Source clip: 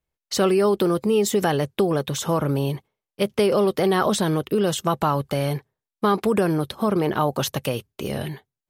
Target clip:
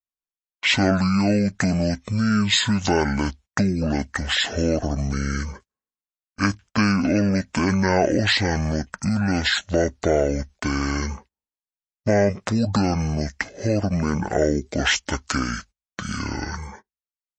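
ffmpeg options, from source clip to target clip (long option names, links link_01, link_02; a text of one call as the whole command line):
ffmpeg -i in.wav -af "tiltshelf=frequency=970:gain=-5,asetrate=22050,aresample=44100,agate=range=-22dB:threshold=-45dB:ratio=16:detection=peak,volume=2dB" out.wav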